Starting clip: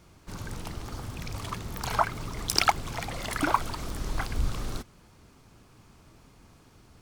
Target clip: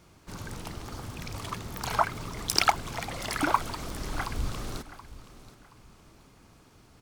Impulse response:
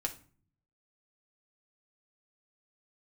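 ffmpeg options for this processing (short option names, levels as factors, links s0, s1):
-filter_complex "[0:a]lowshelf=f=92:g=-5,asplit=2[s0][s1];[s1]aecho=0:1:725|1450|2175:0.158|0.0475|0.0143[s2];[s0][s2]amix=inputs=2:normalize=0"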